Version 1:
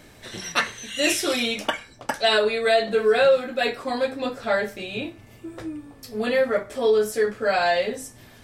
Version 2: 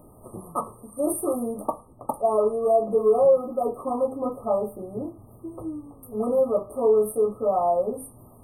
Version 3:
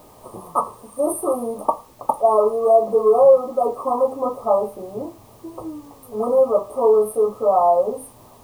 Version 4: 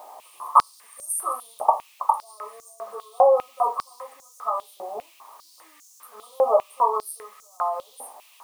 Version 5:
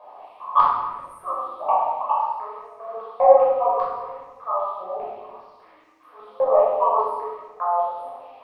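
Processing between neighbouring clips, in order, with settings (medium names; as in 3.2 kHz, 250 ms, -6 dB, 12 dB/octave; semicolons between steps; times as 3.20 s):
FFT band-reject 1.3–8.5 kHz
graphic EQ 500/1000/8000 Hz +5/+12/+5 dB; added noise white -54 dBFS; trim -2 dB
peak limiter -10 dBFS, peak gain reduction 7 dB; step-sequenced high-pass 5 Hz 760–6400 Hz; trim -1 dB
saturation -3.5 dBFS, distortion -24 dB; distance through air 410 m; simulated room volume 920 m³, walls mixed, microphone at 5.5 m; trim -6.5 dB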